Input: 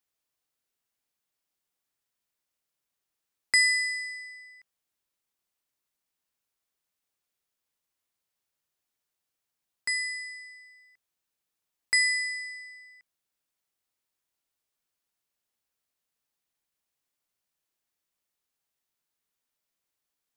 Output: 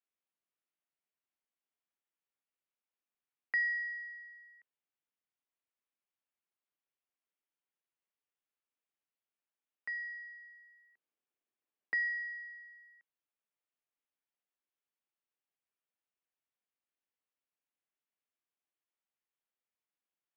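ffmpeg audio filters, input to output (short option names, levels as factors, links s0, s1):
-filter_complex "[0:a]highpass=f=290:t=q:w=0.5412,highpass=f=290:t=q:w=1.307,lowpass=f=3300:t=q:w=0.5176,lowpass=f=3300:t=q:w=0.7071,lowpass=f=3300:t=q:w=1.932,afreqshift=-91,asettb=1/sr,asplit=3[s0][s1][s2];[s0]atrim=end=10.424[s3];[s1]atrim=start=10.42:end=12.09,asetpts=PTS-STARTPTS,afade=t=in:d=0.004:c=qsin,afade=t=out:st=1.666:d=0.004:c=qsin,equalizer=f=370:t=o:w=1.8:g=7.5[s4];[s2]atrim=start=12.086[s5];[s3][s4]acrossfade=d=0.004:c1=hsin:c2=qsin[s6];[s6][s5]acrossfade=d=0.004:c1=qsin:c2=hsin,volume=0.376"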